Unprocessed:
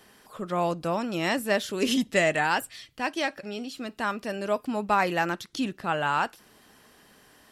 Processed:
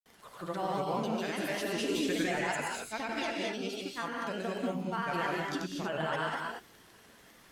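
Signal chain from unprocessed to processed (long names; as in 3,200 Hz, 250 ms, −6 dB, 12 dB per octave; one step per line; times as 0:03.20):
surface crackle 34 per second −41 dBFS
brickwall limiter −21.5 dBFS, peak gain reduction 11 dB
granular cloud, pitch spread up and down by 3 semitones
reverb whose tail is shaped and stops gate 260 ms rising, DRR −1 dB
level −3.5 dB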